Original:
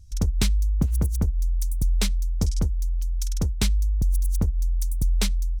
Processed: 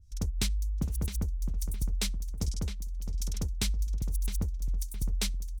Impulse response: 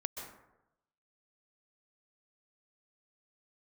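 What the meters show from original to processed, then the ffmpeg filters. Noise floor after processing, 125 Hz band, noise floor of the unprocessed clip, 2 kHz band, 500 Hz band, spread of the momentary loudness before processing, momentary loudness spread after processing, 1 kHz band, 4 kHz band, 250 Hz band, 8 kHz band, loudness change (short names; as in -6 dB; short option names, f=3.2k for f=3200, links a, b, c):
-38 dBFS, -8.5 dB, -26 dBFS, -5.5 dB, -8.5 dB, 4 LU, 4 LU, -8.0 dB, -4.0 dB, -8.5 dB, -4.0 dB, -8.0 dB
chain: -filter_complex "[0:a]asplit=2[a][b];[b]adelay=663,lowpass=f=3k:p=1,volume=-8.5dB,asplit=2[c][d];[d]adelay=663,lowpass=f=3k:p=1,volume=0.45,asplit=2[e][f];[f]adelay=663,lowpass=f=3k:p=1,volume=0.45,asplit=2[g][h];[h]adelay=663,lowpass=f=3k:p=1,volume=0.45,asplit=2[i][j];[j]adelay=663,lowpass=f=3k:p=1,volume=0.45[k];[c][e][g][i][k]amix=inputs=5:normalize=0[l];[a][l]amix=inputs=2:normalize=0,adynamicequalizer=threshold=0.00316:dfrequency=1900:dqfactor=0.7:tfrequency=1900:tqfactor=0.7:attack=5:release=100:ratio=0.375:range=2.5:mode=boostabove:tftype=highshelf,volume=-9dB"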